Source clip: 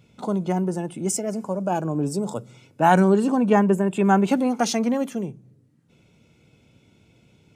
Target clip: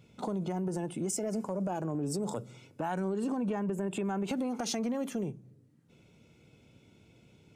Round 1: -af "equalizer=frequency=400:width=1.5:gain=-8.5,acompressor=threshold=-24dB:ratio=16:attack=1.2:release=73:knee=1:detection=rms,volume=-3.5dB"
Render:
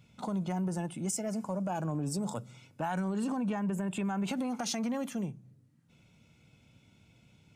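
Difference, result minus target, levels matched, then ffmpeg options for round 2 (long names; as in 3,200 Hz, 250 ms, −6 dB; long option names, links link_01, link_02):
500 Hz band −3.5 dB
-af "equalizer=frequency=400:width=1.5:gain=2,acompressor=threshold=-24dB:ratio=16:attack=1.2:release=73:knee=1:detection=rms,volume=-3.5dB"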